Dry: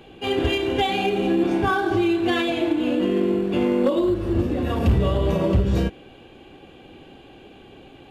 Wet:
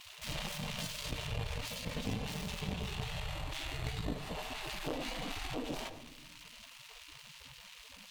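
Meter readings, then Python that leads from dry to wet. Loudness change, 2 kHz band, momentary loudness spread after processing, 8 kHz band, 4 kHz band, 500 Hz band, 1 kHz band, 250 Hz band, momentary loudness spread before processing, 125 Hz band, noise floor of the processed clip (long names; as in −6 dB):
−18.0 dB, −13.5 dB, 12 LU, can't be measured, −9.5 dB, −23.0 dB, −18.0 dB, −22.5 dB, 3 LU, −16.0 dB, −55 dBFS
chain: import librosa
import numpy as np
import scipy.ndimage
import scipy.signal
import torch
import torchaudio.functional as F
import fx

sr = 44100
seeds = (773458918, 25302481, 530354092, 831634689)

p1 = scipy.signal.medfilt(x, 41)
p2 = fx.hum_notches(p1, sr, base_hz=50, count=8)
p3 = fx.spec_gate(p2, sr, threshold_db=-25, keep='weak')
p4 = fx.curve_eq(p3, sr, hz=(230.0, 1500.0, 2800.0), db=(0, -25, -14))
p5 = fx.cheby_harmonics(p4, sr, harmonics=(8,), levels_db=(-6,), full_scale_db=-11.0)
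p6 = fx.rider(p5, sr, range_db=10, speed_s=0.5)
p7 = p5 + (p6 * 10.0 ** (2.5 / 20.0))
p8 = fx.room_shoebox(p7, sr, seeds[0], volume_m3=2600.0, walls='furnished', distance_m=0.47)
p9 = fx.env_flatten(p8, sr, amount_pct=50)
y = p9 * 10.0 ** (1.5 / 20.0)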